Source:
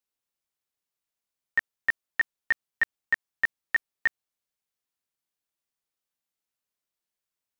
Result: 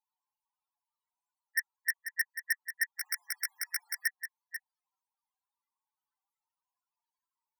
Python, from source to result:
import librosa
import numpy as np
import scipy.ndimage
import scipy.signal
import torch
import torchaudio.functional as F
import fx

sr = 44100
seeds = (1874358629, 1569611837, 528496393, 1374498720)

p1 = fx.peak_eq(x, sr, hz=930.0, db=6.0, octaves=0.61)
p2 = fx.spec_topn(p1, sr, count=8)
p3 = fx.fold_sine(p2, sr, drive_db=17, ceiling_db=-14.0)
p4 = p2 + (p3 * 10.0 ** (-7.0 / 20.0))
p5 = fx.brickwall_highpass(p4, sr, low_hz=680.0)
p6 = p5 + 10.0 ** (-9.5 / 20.0) * np.pad(p5, (int(490 * sr / 1000.0), 0))[:len(p5)]
p7 = fx.spectral_comp(p6, sr, ratio=4.0, at=(2.98, 4.06))
y = p7 * 10.0 ** (-7.5 / 20.0)